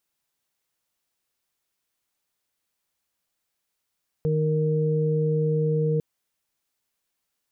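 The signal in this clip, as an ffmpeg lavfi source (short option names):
-f lavfi -i "aevalsrc='0.0794*sin(2*PI*155*t)+0.0126*sin(2*PI*310*t)+0.0631*sin(2*PI*465*t)':d=1.75:s=44100"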